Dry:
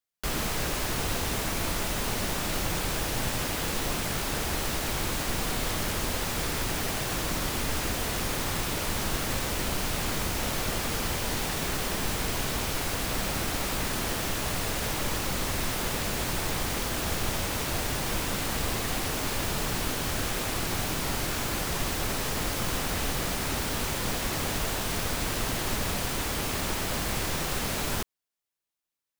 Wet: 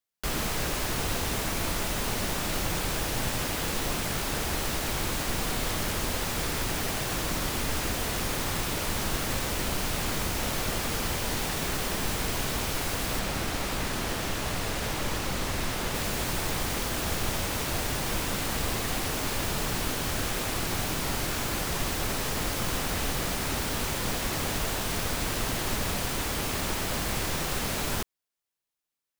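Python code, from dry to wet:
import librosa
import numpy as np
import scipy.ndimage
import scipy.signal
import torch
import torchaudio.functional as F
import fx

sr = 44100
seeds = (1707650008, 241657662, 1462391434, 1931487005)

y = fx.high_shelf(x, sr, hz=7700.0, db=-5.5, at=(13.19, 15.95))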